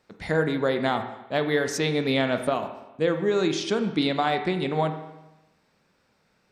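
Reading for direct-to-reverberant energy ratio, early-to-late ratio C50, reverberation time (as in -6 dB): 6.5 dB, 9.0 dB, 1.0 s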